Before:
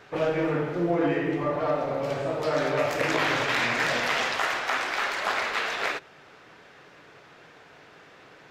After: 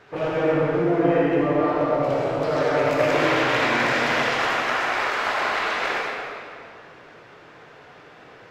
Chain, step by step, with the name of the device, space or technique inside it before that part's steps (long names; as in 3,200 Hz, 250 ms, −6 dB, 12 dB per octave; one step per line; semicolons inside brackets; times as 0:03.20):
swimming-pool hall (convolution reverb RT60 2.4 s, pre-delay 59 ms, DRR −3.5 dB; high-shelf EQ 4,000 Hz −6 dB)